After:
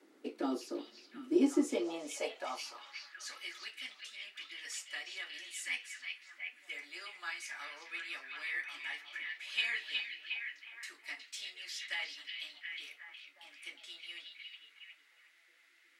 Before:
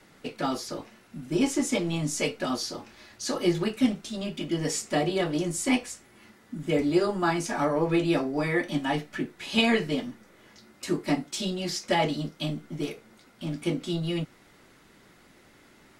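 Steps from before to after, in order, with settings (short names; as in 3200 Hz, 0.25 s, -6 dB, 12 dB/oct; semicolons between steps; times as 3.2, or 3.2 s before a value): ladder high-pass 220 Hz, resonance 40%; delay with a stepping band-pass 0.363 s, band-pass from 3400 Hz, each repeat -0.7 oct, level -2 dB; high-pass sweep 320 Hz -> 2000 Hz, 1.56–3.4; gain -4.5 dB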